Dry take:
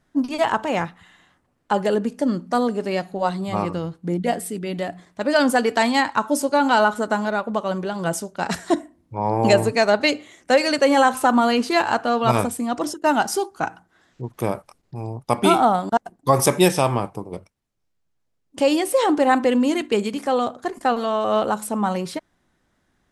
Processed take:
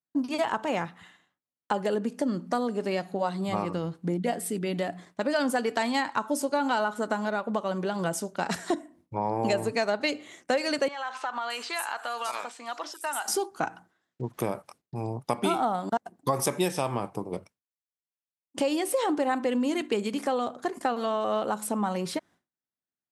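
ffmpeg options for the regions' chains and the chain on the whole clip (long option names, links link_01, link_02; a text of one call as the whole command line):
ffmpeg -i in.wav -filter_complex "[0:a]asettb=1/sr,asplit=3[link_01][link_02][link_03];[link_01]atrim=end=10.884[link_04];[link_02]atrim=start=10.88:end=13.28,asetpts=PTS-STARTPTS,afade=type=in:duration=0.004:curve=qsin,afade=type=out:start_time=2.396:duration=0.004:curve=qsin,highpass=1000,acompressor=threshold=-29dB:ratio=3:attack=3.2:release=140:knee=1:detection=peak,acrossover=split=5700[link_05][link_06];[link_06]adelay=620[link_07];[link_05][link_07]amix=inputs=2:normalize=0,atrim=end_sample=105840[link_08];[link_03]atrim=start=13.276[link_09];[link_04][link_08]acrossfade=duration=0.004:curve1=hsin:curve2=qsin[link_10];[link_10][link_09]acrossfade=duration=0.004:curve1=qsin:curve2=hsin,highpass=120,agate=range=-33dB:threshold=-46dB:ratio=3:detection=peak,acompressor=threshold=-26dB:ratio=3" out.wav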